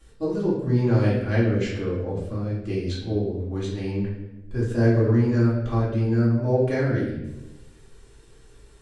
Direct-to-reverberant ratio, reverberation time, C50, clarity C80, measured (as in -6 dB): -8.5 dB, 1.0 s, 2.0 dB, 5.5 dB